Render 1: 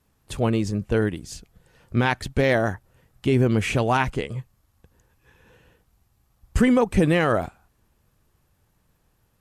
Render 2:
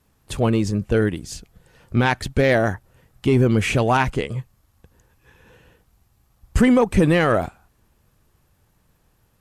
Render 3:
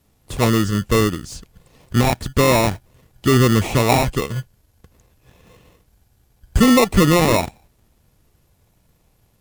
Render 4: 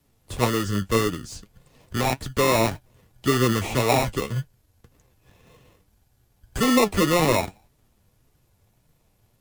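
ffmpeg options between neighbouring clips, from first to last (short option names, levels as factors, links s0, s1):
-af "acontrast=73,volume=0.708"
-filter_complex "[0:a]acrossover=split=2300[s0][s1];[s0]acrusher=samples=28:mix=1:aa=0.000001[s2];[s1]asoftclip=type=tanh:threshold=0.0251[s3];[s2][s3]amix=inputs=2:normalize=0,volume=1.33"
-filter_complex "[0:a]acrossover=split=270|1800[s0][s1][s2];[s0]alimiter=limit=0.112:level=0:latency=1[s3];[s3][s1][s2]amix=inputs=3:normalize=0,flanger=delay=6.4:depth=4.3:regen=53:speed=1.8:shape=triangular"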